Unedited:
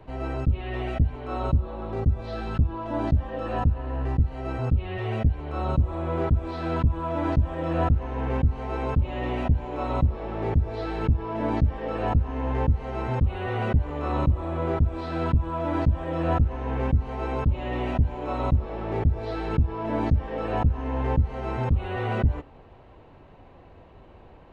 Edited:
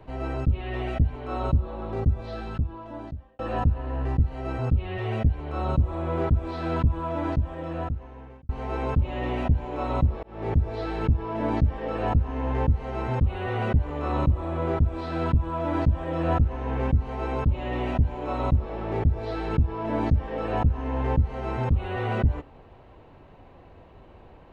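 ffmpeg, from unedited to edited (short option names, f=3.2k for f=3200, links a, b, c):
-filter_complex "[0:a]asplit=4[a][b][c][d];[a]atrim=end=3.39,asetpts=PTS-STARTPTS,afade=t=out:st=2.06:d=1.33[e];[b]atrim=start=3.39:end=8.49,asetpts=PTS-STARTPTS,afade=t=in:d=0.004:c=hsin,afade=t=out:st=3.55:d=1.55[f];[c]atrim=start=8.49:end=10.23,asetpts=PTS-STARTPTS,afade=t=in:d=0.004:c=hsin,afade=t=out:st=1.736:d=0.004:c=hsin[g];[d]atrim=start=10.23,asetpts=PTS-STARTPTS,afade=t=in:d=0.3[h];[e][f][g][h]concat=n=4:v=0:a=1"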